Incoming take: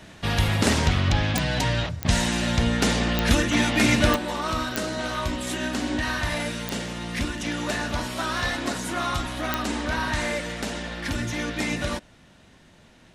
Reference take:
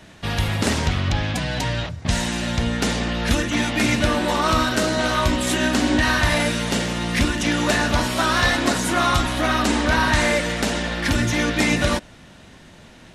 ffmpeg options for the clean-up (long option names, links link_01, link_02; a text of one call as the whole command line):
ffmpeg -i in.wav -af "adeclick=threshold=4,asetnsamples=nb_out_samples=441:pad=0,asendcmd='4.16 volume volume 8dB',volume=0dB" out.wav